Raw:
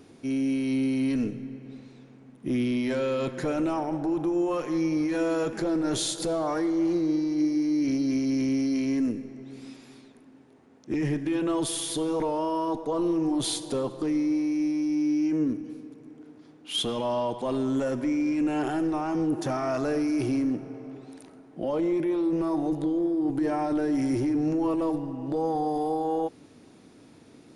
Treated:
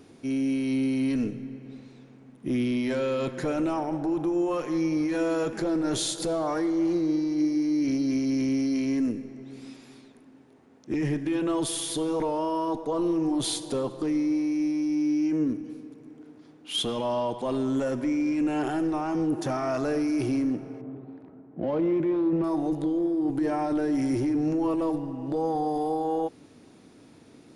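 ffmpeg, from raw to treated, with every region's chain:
-filter_complex "[0:a]asettb=1/sr,asplit=3[a][b][c];[a]atrim=end=20.814[d];[b]atrim=start=20.81:end=22.44,asetpts=PTS-STARTPTS,afade=t=in:d=0.004:c=qsin,afade=t=out:st=1.626:d=0.004:c=qsin,highpass=63,adynamicsmooth=sensitivity=5:basefreq=1.2k,bass=f=250:g=5,treble=f=4k:g=-6[e];[c]atrim=start=22.436[f];[d][e]acrossfade=d=0.004:c1=hsin:c2=qsin[g];[g][f]acrossfade=d=0.004:c1=qsin:c2=hsin"

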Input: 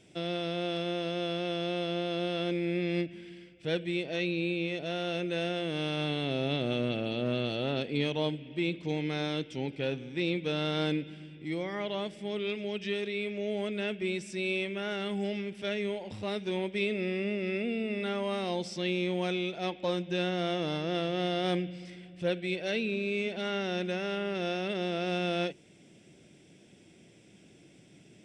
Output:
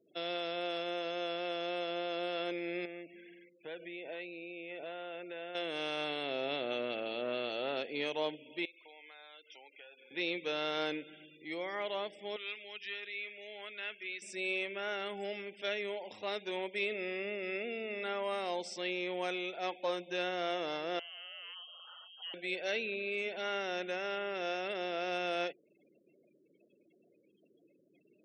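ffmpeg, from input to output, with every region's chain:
-filter_complex "[0:a]asettb=1/sr,asplit=3[a][b][c];[a]atrim=end=2.854[d];[b]atrim=start=2.85:end=5.55,asetpts=PTS-STARTPTS,afade=t=in:d=0.004:c=qsin,afade=t=out:st=2.696:d=0.004:c=qsin,highpass=110,lowpass=2.6k,acompressor=threshold=-34dB:ratio=20:attack=3.2:release=140:knee=1:detection=peak[e];[c]atrim=start=5.546[f];[d][e]acrossfade=d=0.004:c1=hsin:c2=qsin[g];[g][f]acrossfade=d=0.004:c1=qsin:c2=hsin,asettb=1/sr,asplit=3[h][i][j];[h]atrim=end=8.654[k];[i]atrim=start=8.65:end=10.11,asetpts=PTS-STARTPTS,afade=t=in:d=0.004:c=qsin,afade=t=out:st=1.456:d=0.004:c=qsin,highpass=850,highshelf=f=3.9k:g=-9,acompressor=threshold=-48dB:ratio=8:attack=3.2:release=140:knee=1:detection=peak[l];[j]atrim=start=10.106[m];[k][l]acrossfade=d=0.004:c1=hsin:c2=qsin[n];[n][m]acrossfade=d=0.004:c1=qsin:c2=hsin,asettb=1/sr,asplit=3[o][p][q];[o]atrim=end=12.364[r];[p]atrim=start=12.36:end=14.22,asetpts=PTS-STARTPTS,afade=t=in:d=0.004:c=qsin,afade=t=out:st=1.856:d=0.004:c=qsin,acrossover=split=4700[s][t];[t]acompressor=threshold=-59dB:ratio=4:attack=1:release=60[u];[s][u]amix=inputs=2:normalize=0,highpass=400,equalizer=f=520:w=0.99:g=-13[v];[q]atrim=start=14.216[w];[r][v]acrossfade=d=0.004:c1=hsin:c2=qsin[x];[x][w]acrossfade=d=0.004:c1=qsin:c2=hsin,asettb=1/sr,asplit=3[y][z][aa];[y]atrim=end=20.994[ab];[z]atrim=start=20.99:end=22.34,asetpts=PTS-STARTPTS,afade=t=in:d=0.004:c=qsin,afade=t=out:st=1.346:d=0.004:c=qsin,equalizer=f=130:t=o:w=1.6:g=-9.5,acompressor=threshold=-45dB:ratio=3:attack=3.2:release=140:knee=1:detection=peak,lowpass=f=2.9k:t=q:w=0.5098,lowpass=f=2.9k:t=q:w=0.6013,lowpass=f=2.9k:t=q:w=0.9,lowpass=f=2.9k:t=q:w=2.563,afreqshift=-3400[ac];[aa]atrim=start=22.336[ad];[ab][ac]acrossfade=d=0.004:c1=hsin:c2=qsin[ae];[ae][ad]acrossfade=d=0.004:c1=qsin:c2=hsin,afftfilt=real='re*gte(hypot(re,im),0.00251)':imag='im*gte(hypot(re,im),0.00251)':win_size=1024:overlap=0.75,highpass=520,adynamicequalizer=threshold=0.00224:dfrequency=3800:dqfactor=1.4:tfrequency=3800:tqfactor=1.4:attack=5:release=100:ratio=0.375:range=2.5:mode=cutabove:tftype=bell"

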